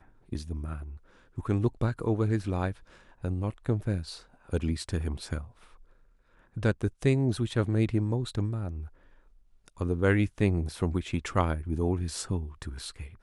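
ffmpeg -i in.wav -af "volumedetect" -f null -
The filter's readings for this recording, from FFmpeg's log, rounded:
mean_volume: -30.2 dB
max_volume: -10.1 dB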